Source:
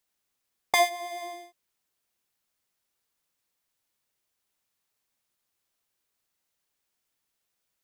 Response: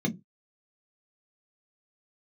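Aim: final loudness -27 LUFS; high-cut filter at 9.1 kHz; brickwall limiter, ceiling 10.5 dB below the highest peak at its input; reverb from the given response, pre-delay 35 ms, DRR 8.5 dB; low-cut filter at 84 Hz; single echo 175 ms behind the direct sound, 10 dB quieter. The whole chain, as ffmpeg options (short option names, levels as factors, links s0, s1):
-filter_complex "[0:a]highpass=84,lowpass=9100,alimiter=limit=0.133:level=0:latency=1,aecho=1:1:175:0.316,asplit=2[s0][s1];[1:a]atrim=start_sample=2205,adelay=35[s2];[s1][s2]afir=irnorm=-1:irlink=0,volume=0.178[s3];[s0][s3]amix=inputs=2:normalize=0,volume=1.78"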